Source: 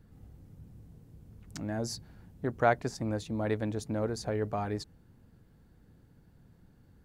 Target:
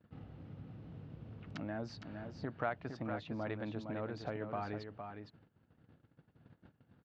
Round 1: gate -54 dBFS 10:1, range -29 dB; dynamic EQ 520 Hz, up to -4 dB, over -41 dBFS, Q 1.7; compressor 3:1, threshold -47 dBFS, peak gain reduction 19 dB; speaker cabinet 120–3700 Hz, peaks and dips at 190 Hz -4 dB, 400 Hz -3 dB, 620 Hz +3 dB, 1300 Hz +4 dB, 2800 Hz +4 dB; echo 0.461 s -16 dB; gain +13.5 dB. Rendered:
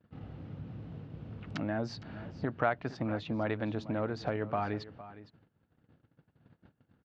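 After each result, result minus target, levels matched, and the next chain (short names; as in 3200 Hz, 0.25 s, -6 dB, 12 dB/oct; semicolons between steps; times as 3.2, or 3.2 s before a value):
compressor: peak gain reduction -7.5 dB; echo-to-direct -9 dB
gate -54 dBFS 10:1, range -29 dB; dynamic EQ 520 Hz, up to -4 dB, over -41 dBFS, Q 1.7; compressor 3:1, threshold -58 dBFS, peak gain reduction 26.5 dB; speaker cabinet 120–3700 Hz, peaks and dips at 190 Hz -4 dB, 400 Hz -3 dB, 620 Hz +3 dB, 1300 Hz +4 dB, 2800 Hz +4 dB; echo 0.461 s -16 dB; gain +13.5 dB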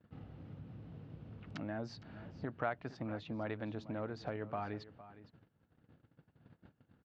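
echo-to-direct -9 dB
gate -54 dBFS 10:1, range -29 dB; dynamic EQ 520 Hz, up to -4 dB, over -41 dBFS, Q 1.7; compressor 3:1, threshold -58 dBFS, peak gain reduction 26.5 dB; speaker cabinet 120–3700 Hz, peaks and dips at 190 Hz -4 dB, 400 Hz -3 dB, 620 Hz +3 dB, 1300 Hz +4 dB, 2800 Hz +4 dB; echo 0.461 s -7 dB; gain +13.5 dB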